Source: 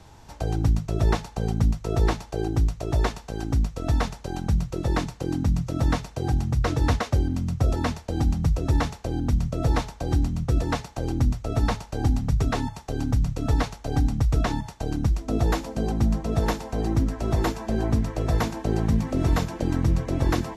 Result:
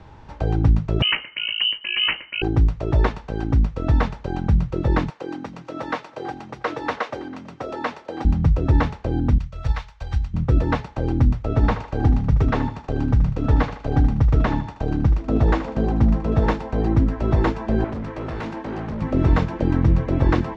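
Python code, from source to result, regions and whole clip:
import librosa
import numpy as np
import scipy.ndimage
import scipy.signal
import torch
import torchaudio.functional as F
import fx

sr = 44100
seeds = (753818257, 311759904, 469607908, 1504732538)

y = fx.chain(x, sr, fx.low_shelf(hz=140.0, db=-5.5),
    fx.freq_invert(carrier_hz=3000), at=(1.02, 2.42))
y = fx.chain(y, sr, fx.highpass(hz=460.0, slope=12),
    fx.echo_single(ms=326, db=-20.5), at=(5.1, 8.25))
y = fx.chain(y, sr, fx.tone_stack(knobs='10-0-10'),
    fx.transient(attack_db=7, sustain_db=-3),
    fx.resample_bad(factor=2, down='filtered', up='zero_stuff'), at=(9.38, 10.34))
y = fx.chain(y, sr, fx.cheby1_lowpass(hz=7900.0, order=3),
    fx.echo_thinned(ms=77, feedback_pct=44, hz=230.0, wet_db=-11.5),
    fx.doppler_dist(depth_ms=0.12), at=(11.47, 16.47))
y = fx.chain(y, sr, fx.highpass(hz=180.0, slope=6),
    fx.overload_stage(gain_db=31.0), at=(17.84, 19.02))
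y = scipy.signal.sosfilt(scipy.signal.butter(2, 2600.0, 'lowpass', fs=sr, output='sos'), y)
y = fx.notch(y, sr, hz=700.0, q=12.0)
y = y * librosa.db_to_amplitude(5.0)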